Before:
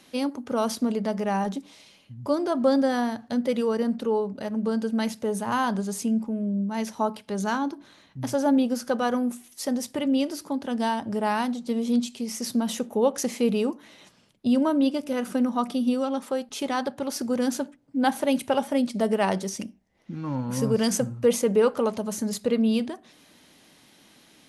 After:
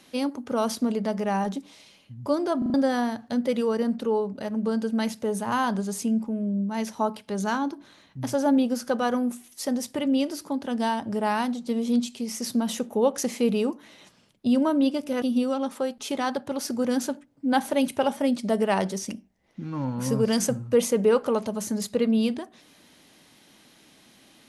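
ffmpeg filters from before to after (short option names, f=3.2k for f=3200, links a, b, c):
-filter_complex "[0:a]asplit=6[a][b][c][d][e][f];[a]atrim=end=2.622[g];[b]atrim=start=2.578:end=2.622[h];[c]atrim=start=2.578:end=2.622[i];[d]atrim=start=2.578:end=2.622[j];[e]atrim=start=2.738:end=15.222[k];[f]atrim=start=15.728[l];[g][h]acrossfade=d=0.004:c1=hsin:c2=hsin[m];[m][i]acrossfade=d=0.004:c1=hsin:c2=hsin[n];[n][j]acrossfade=d=0.004:c1=hsin:c2=hsin[o];[o][k]acrossfade=d=0.004:c1=hsin:c2=hsin[p];[p][l]acrossfade=d=0.004:c1=hsin:c2=hsin"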